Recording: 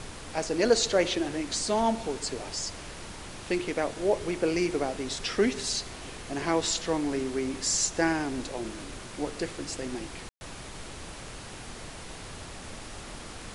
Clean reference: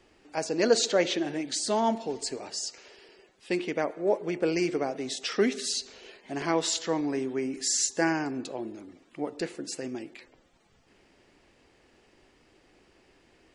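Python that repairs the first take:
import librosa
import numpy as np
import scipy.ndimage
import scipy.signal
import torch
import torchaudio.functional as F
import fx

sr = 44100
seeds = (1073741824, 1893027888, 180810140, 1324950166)

y = fx.fix_ambience(x, sr, seeds[0], print_start_s=11.14, print_end_s=11.64, start_s=10.29, end_s=10.41)
y = fx.noise_reduce(y, sr, print_start_s=11.14, print_end_s=11.64, reduce_db=20.0)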